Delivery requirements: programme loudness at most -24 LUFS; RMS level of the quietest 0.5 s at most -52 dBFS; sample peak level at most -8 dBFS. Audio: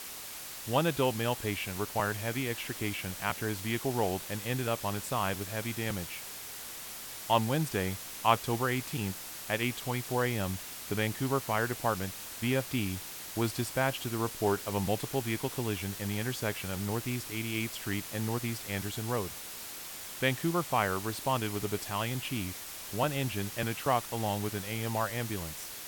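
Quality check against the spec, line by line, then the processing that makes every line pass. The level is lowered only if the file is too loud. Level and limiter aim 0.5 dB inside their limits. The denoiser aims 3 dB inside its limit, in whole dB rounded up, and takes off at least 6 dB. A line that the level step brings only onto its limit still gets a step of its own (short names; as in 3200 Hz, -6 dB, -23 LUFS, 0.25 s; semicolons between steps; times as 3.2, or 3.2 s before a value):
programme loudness -33.0 LUFS: OK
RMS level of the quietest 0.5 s -43 dBFS: fail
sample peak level -11.0 dBFS: OK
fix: denoiser 12 dB, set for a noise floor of -43 dBFS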